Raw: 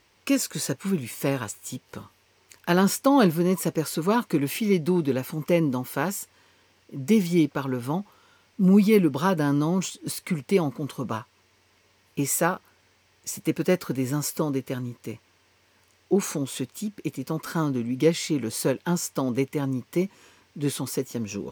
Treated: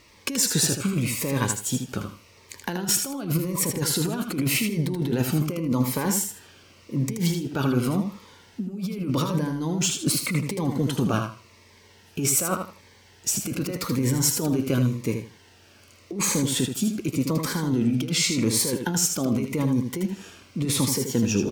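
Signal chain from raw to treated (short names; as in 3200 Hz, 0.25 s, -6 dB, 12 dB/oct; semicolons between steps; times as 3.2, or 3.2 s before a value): high shelf 12000 Hz -4.5 dB; negative-ratio compressor -29 dBFS, ratio -1; feedback echo 79 ms, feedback 21%, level -6.5 dB; cascading phaser falling 0.87 Hz; gain +4.5 dB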